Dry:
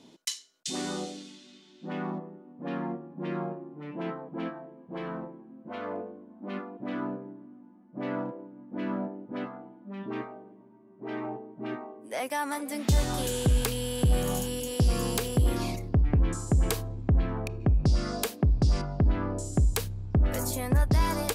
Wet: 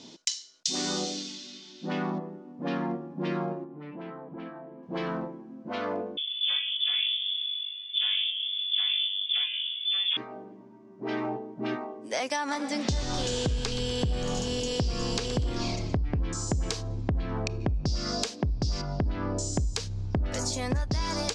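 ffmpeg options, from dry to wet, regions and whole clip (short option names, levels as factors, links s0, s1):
-filter_complex "[0:a]asettb=1/sr,asplit=3[s0][s1][s2];[s0]atrim=end=3.644[s3];[s1]atrim=start=3.64:end=4.83,asetpts=PTS-STARTPTS,afade=t=in:d=0.004:c=qsin,afade=t=out:st=1.186:d=0.004:c=qsin,lowpass=2600,acompressor=threshold=0.00501:ratio=2.5:attack=3.2:release=140:knee=1:detection=peak[s4];[s2]atrim=start=4.826[s5];[s3][s4]acrossfade=d=0.004:c1=hsin:c2=qsin[s6];[s6][s5]acrossfade=d=0.004:c1=qsin:c2=hsin,asettb=1/sr,asplit=3[s7][s8][s9];[s7]atrim=end=6.174[s10];[s8]atrim=start=6.17:end=10.17,asetpts=PTS-STARTPTS,afade=t=in:d=0.004:c=qsin,afade=t=out:st=3.996:d=0.004:c=qsin,acontrast=75,lowpass=f=3100:t=q:w=0.5098,lowpass=f=3100:t=q:w=0.6013,lowpass=f=3100:t=q:w=0.9,lowpass=f=3100:t=q:w=2.563,afreqshift=-3700[s11];[s9]atrim=start=10.166[s12];[s10][s11]acrossfade=d=0.004:c1=hsin:c2=qsin[s13];[s13][s12]acrossfade=d=0.004:c1=qsin:c2=hsin,asettb=1/sr,asplit=3[s14][s15][s16];[s14]atrim=end=12.364[s17];[s15]atrim=start=12.36:end=15.97,asetpts=PTS-STARTPTS,afade=t=in:d=0.004:c=qsin,afade=t=out:st=3.606:d=0.004:c=qsin,highshelf=f=6600:g=-9.5,asplit=7[s18][s19][s20][s21][s22][s23][s24];[s19]adelay=122,afreqshift=-40,volume=0.2[s25];[s20]adelay=244,afreqshift=-80,volume=0.116[s26];[s21]adelay=366,afreqshift=-120,volume=0.0668[s27];[s22]adelay=488,afreqshift=-160,volume=0.0389[s28];[s23]adelay=610,afreqshift=-200,volume=0.0226[s29];[s24]adelay=732,afreqshift=-240,volume=0.013[s30];[s18][s25][s26][s27][s28][s29][s30]amix=inputs=7:normalize=0,atrim=end_sample=159201[s31];[s16]atrim=start=15.966[s32];[s17][s31]acrossfade=d=0.004:c1=hsin:c2=qsin[s33];[s33][s32]acrossfade=d=0.004:c1=qsin:c2=hsin,equalizer=f=5400:t=o:w=1.3:g=11,acompressor=threshold=0.0316:ratio=6,lowpass=f=7200:w=0.5412,lowpass=f=7200:w=1.3066,volume=1.68"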